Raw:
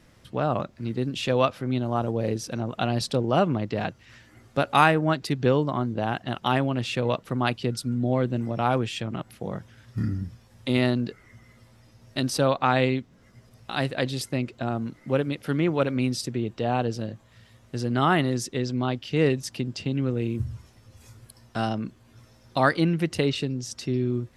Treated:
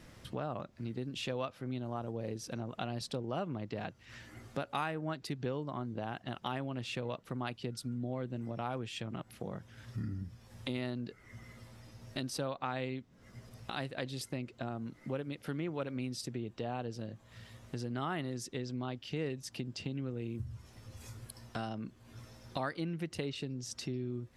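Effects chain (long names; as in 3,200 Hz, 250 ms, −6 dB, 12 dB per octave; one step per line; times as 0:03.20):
downward compressor 2.5 to 1, threshold −43 dBFS, peak gain reduction 19.5 dB
level +1 dB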